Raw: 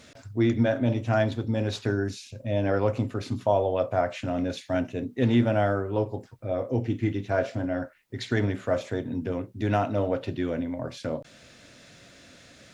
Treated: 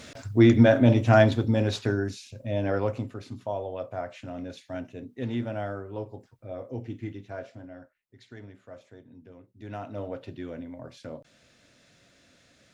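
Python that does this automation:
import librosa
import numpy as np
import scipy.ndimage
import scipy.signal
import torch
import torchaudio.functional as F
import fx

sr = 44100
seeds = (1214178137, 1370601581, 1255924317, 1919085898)

y = fx.gain(x, sr, db=fx.line((1.21, 6.0), (2.17, -2.0), (2.8, -2.0), (3.25, -9.0), (6.99, -9.0), (8.16, -20.0), (9.37, -20.0), (10.0, -9.0)))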